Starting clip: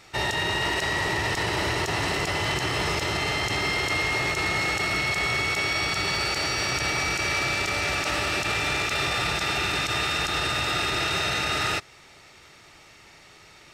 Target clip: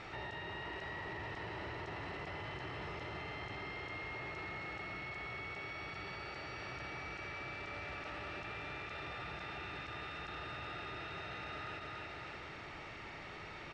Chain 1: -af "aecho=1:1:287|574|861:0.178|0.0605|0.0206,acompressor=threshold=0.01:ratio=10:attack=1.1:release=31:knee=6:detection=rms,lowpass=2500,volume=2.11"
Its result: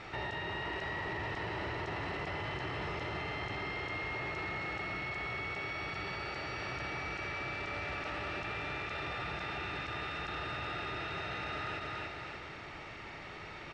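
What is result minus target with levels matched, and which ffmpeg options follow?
compression: peak gain reduction -6 dB
-af "aecho=1:1:287|574|861:0.178|0.0605|0.0206,acompressor=threshold=0.00473:ratio=10:attack=1.1:release=31:knee=6:detection=rms,lowpass=2500,volume=2.11"

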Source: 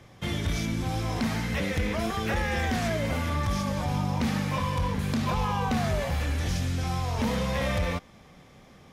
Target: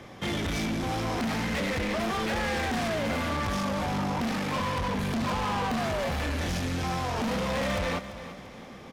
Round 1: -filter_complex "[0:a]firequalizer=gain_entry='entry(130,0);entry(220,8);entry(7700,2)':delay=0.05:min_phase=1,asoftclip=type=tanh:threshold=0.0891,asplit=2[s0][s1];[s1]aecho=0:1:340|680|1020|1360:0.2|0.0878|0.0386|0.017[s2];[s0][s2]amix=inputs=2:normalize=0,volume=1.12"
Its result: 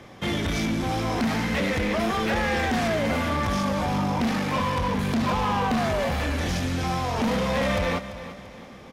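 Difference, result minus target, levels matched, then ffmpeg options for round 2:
saturation: distortion -5 dB
-filter_complex "[0:a]firequalizer=gain_entry='entry(130,0);entry(220,8);entry(7700,2)':delay=0.05:min_phase=1,asoftclip=type=tanh:threshold=0.0398,asplit=2[s0][s1];[s1]aecho=0:1:340|680|1020|1360:0.2|0.0878|0.0386|0.017[s2];[s0][s2]amix=inputs=2:normalize=0,volume=1.12"

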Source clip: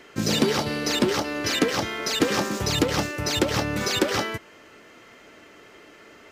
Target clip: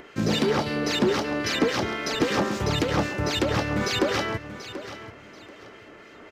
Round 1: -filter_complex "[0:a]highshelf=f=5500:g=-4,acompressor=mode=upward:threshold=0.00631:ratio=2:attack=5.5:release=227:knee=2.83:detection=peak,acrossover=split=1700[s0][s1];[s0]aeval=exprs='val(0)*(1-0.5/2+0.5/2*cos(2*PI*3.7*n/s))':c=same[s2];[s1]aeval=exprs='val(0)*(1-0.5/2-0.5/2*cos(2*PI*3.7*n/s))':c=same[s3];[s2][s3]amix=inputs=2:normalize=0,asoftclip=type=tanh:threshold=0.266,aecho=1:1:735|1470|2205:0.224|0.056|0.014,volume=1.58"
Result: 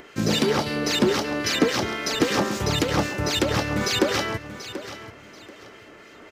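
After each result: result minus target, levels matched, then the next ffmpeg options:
saturation: distortion -8 dB; 8 kHz band +4.0 dB
-filter_complex "[0:a]highshelf=f=5500:g=-4,acompressor=mode=upward:threshold=0.00631:ratio=2:attack=5.5:release=227:knee=2.83:detection=peak,acrossover=split=1700[s0][s1];[s0]aeval=exprs='val(0)*(1-0.5/2+0.5/2*cos(2*PI*3.7*n/s))':c=same[s2];[s1]aeval=exprs='val(0)*(1-0.5/2-0.5/2*cos(2*PI*3.7*n/s))':c=same[s3];[s2][s3]amix=inputs=2:normalize=0,asoftclip=type=tanh:threshold=0.126,aecho=1:1:735|1470|2205:0.224|0.056|0.014,volume=1.58"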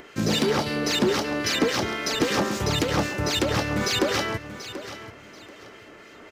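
8 kHz band +4.0 dB
-filter_complex "[0:a]highshelf=f=5500:g=-13,acompressor=mode=upward:threshold=0.00631:ratio=2:attack=5.5:release=227:knee=2.83:detection=peak,acrossover=split=1700[s0][s1];[s0]aeval=exprs='val(0)*(1-0.5/2+0.5/2*cos(2*PI*3.7*n/s))':c=same[s2];[s1]aeval=exprs='val(0)*(1-0.5/2-0.5/2*cos(2*PI*3.7*n/s))':c=same[s3];[s2][s3]amix=inputs=2:normalize=0,asoftclip=type=tanh:threshold=0.126,aecho=1:1:735|1470|2205:0.224|0.056|0.014,volume=1.58"

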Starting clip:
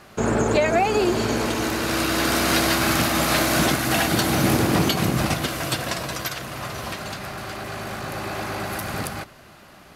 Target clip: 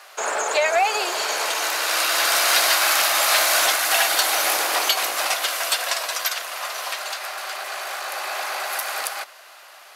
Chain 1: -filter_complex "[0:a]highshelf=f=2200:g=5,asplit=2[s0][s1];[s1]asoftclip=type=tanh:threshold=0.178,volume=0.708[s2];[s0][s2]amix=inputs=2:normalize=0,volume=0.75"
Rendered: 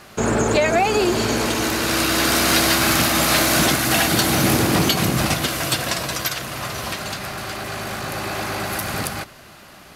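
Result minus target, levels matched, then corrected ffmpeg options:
500 Hz band +3.5 dB
-filter_complex "[0:a]highpass=f=600:w=0.5412,highpass=f=600:w=1.3066,highshelf=f=2200:g=5,asplit=2[s0][s1];[s1]asoftclip=type=tanh:threshold=0.178,volume=0.708[s2];[s0][s2]amix=inputs=2:normalize=0,volume=0.75"

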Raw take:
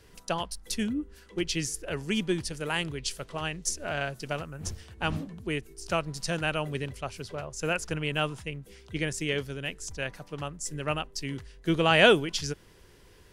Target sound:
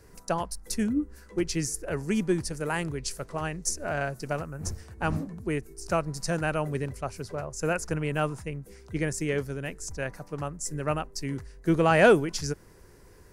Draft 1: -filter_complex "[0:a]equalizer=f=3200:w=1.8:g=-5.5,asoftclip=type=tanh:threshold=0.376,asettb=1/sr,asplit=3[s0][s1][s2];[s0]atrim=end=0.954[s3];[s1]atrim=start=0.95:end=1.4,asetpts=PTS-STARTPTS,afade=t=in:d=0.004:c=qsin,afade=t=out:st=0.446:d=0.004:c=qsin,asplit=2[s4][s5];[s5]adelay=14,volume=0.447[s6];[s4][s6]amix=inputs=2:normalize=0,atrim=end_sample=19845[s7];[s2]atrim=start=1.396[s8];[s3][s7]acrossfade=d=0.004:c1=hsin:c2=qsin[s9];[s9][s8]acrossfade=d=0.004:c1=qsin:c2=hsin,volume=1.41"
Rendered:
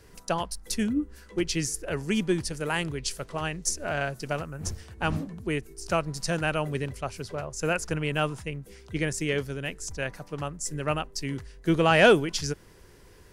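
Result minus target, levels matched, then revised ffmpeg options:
4 kHz band +5.0 dB
-filter_complex "[0:a]equalizer=f=3200:w=1.8:g=-15,asoftclip=type=tanh:threshold=0.376,asettb=1/sr,asplit=3[s0][s1][s2];[s0]atrim=end=0.954[s3];[s1]atrim=start=0.95:end=1.4,asetpts=PTS-STARTPTS,afade=t=in:d=0.004:c=qsin,afade=t=out:st=0.446:d=0.004:c=qsin,asplit=2[s4][s5];[s5]adelay=14,volume=0.447[s6];[s4][s6]amix=inputs=2:normalize=0,atrim=end_sample=19845[s7];[s2]atrim=start=1.396[s8];[s3][s7]acrossfade=d=0.004:c1=hsin:c2=qsin[s9];[s9][s8]acrossfade=d=0.004:c1=qsin:c2=hsin,volume=1.41"

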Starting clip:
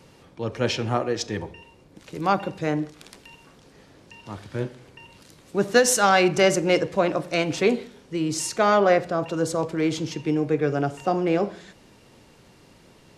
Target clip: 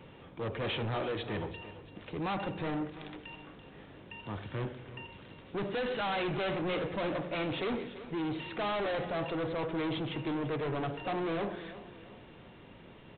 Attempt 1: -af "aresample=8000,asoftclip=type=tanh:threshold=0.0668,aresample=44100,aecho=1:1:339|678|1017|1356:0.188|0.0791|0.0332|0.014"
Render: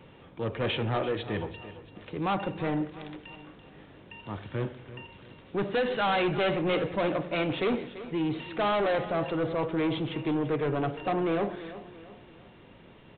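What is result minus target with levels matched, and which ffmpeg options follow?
saturation: distortion -4 dB
-af "aresample=8000,asoftclip=type=tanh:threshold=0.0266,aresample=44100,aecho=1:1:339|678|1017|1356:0.188|0.0791|0.0332|0.014"

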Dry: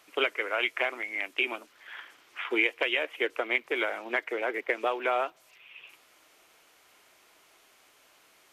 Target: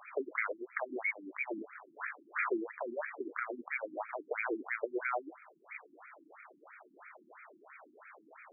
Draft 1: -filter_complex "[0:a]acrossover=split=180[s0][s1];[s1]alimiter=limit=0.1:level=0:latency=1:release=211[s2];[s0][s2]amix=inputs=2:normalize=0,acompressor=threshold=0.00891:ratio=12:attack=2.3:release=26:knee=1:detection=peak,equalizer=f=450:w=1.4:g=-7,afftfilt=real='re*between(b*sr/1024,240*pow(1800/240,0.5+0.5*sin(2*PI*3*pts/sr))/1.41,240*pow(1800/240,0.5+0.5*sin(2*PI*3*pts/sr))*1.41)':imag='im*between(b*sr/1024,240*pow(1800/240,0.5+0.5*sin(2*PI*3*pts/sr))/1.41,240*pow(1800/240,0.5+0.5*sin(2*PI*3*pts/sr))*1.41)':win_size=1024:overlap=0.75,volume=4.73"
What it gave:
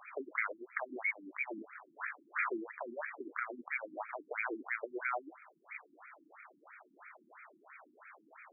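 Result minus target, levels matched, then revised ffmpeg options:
500 Hz band -4.0 dB
-filter_complex "[0:a]acrossover=split=180[s0][s1];[s1]alimiter=limit=0.1:level=0:latency=1:release=211[s2];[s0][s2]amix=inputs=2:normalize=0,acompressor=threshold=0.00891:ratio=12:attack=2.3:release=26:knee=1:detection=peak,afftfilt=real='re*between(b*sr/1024,240*pow(1800/240,0.5+0.5*sin(2*PI*3*pts/sr))/1.41,240*pow(1800/240,0.5+0.5*sin(2*PI*3*pts/sr))*1.41)':imag='im*between(b*sr/1024,240*pow(1800/240,0.5+0.5*sin(2*PI*3*pts/sr))/1.41,240*pow(1800/240,0.5+0.5*sin(2*PI*3*pts/sr))*1.41)':win_size=1024:overlap=0.75,volume=4.73"

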